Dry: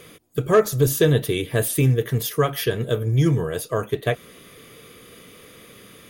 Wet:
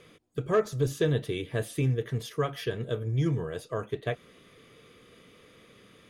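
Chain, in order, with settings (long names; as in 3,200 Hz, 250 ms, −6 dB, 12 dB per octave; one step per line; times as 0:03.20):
high-frequency loss of the air 64 metres
level −8.5 dB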